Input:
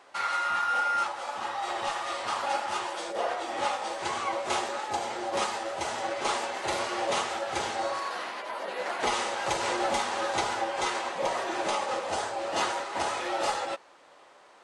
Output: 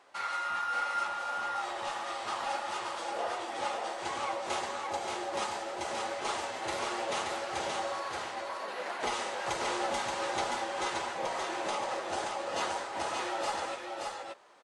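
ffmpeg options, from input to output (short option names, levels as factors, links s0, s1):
-af "aecho=1:1:577:0.631,volume=0.531"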